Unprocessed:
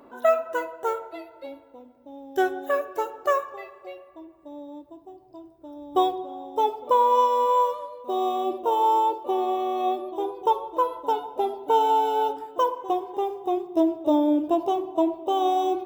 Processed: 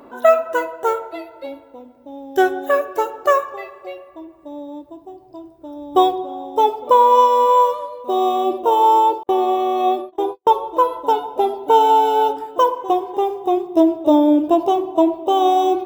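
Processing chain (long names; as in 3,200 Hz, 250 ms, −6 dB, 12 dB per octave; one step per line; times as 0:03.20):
0:09.23–0:10.51: noise gate −31 dBFS, range −50 dB
level +7.5 dB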